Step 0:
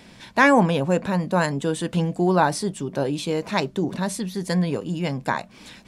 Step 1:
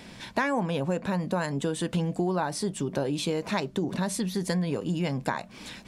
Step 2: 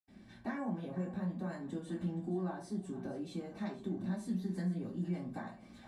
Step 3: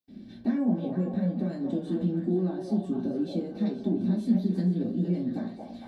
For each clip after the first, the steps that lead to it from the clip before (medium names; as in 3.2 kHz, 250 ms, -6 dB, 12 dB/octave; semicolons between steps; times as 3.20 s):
compression 6:1, threshold -26 dBFS, peak gain reduction 14.5 dB; trim +1.5 dB
two-band feedback delay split 590 Hz, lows 91 ms, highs 470 ms, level -14.5 dB; reverberation RT60 0.30 s, pre-delay 77 ms; trim +16 dB
ten-band graphic EQ 250 Hz +11 dB, 500 Hz +4 dB, 1 kHz -9 dB, 2 kHz -5 dB, 4 kHz +7 dB, 8 kHz -9 dB; repeats whose band climbs or falls 229 ms, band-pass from 650 Hz, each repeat 0.7 oct, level 0 dB; trim +3.5 dB